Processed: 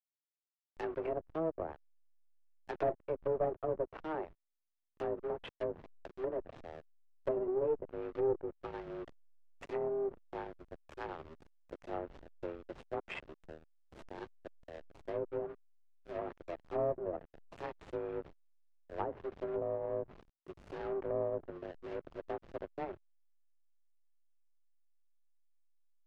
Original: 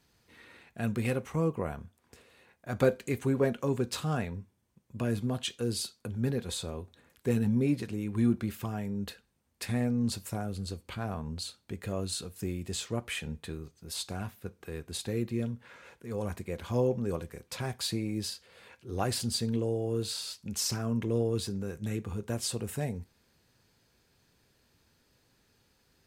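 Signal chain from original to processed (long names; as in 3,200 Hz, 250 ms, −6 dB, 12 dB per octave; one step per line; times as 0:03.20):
in parallel at −8 dB: comparator with hysteresis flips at −32 dBFS
on the sum: single-sideband voice off tune +160 Hz 200–2,800 Hz
harmonic generator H 5 −12 dB, 6 −16 dB, 7 −22 dB, 8 −30 dB, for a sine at −12 dBFS
slack as between gear wheels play −28 dBFS
treble cut that deepens with the level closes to 780 Hz, closed at −24 dBFS
level −8 dB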